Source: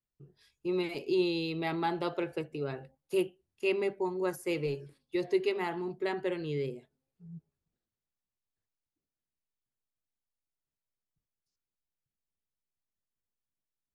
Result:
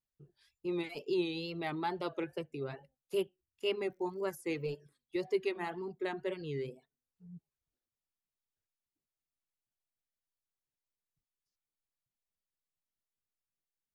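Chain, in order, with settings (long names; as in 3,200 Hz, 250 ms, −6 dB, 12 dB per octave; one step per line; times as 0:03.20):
0:03.80–0:04.65: surface crackle 110 per second −52 dBFS
tape wow and flutter 91 cents
reverb reduction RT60 0.51 s
level −3.5 dB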